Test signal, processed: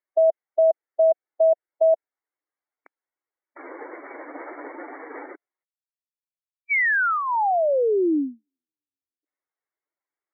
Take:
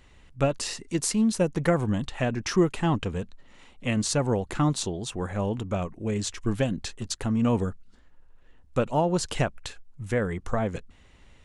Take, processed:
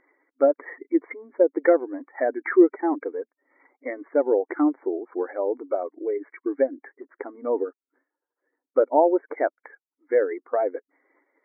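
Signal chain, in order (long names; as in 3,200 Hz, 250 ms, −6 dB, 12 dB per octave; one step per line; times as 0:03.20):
expanding power law on the bin magnitudes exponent 1.6
linear-phase brick-wall band-pass 270–2,300 Hz
dynamic equaliser 1,100 Hz, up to −7 dB, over −53 dBFS, Q 4.9
level +7.5 dB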